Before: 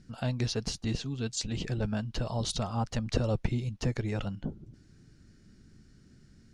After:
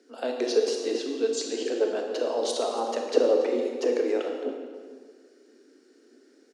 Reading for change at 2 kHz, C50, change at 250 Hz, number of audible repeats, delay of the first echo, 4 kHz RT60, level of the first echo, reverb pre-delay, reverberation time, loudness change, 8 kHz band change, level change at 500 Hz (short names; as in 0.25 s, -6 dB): +2.5 dB, 3.0 dB, +2.0 dB, 1, 0.282 s, 1.3 s, -16.0 dB, 25 ms, 1.6 s, +6.0 dB, +2.0 dB, +14.5 dB